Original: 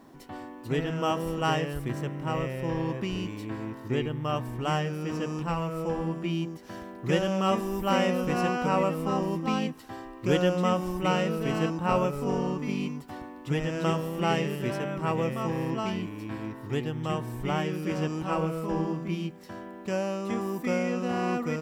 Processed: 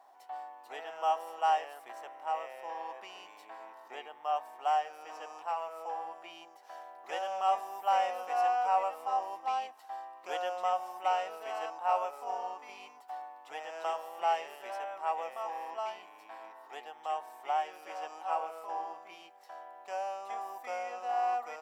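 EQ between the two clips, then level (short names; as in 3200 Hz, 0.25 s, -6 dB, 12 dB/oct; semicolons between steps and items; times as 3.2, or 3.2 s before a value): ladder high-pass 700 Hz, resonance 75%; +2.0 dB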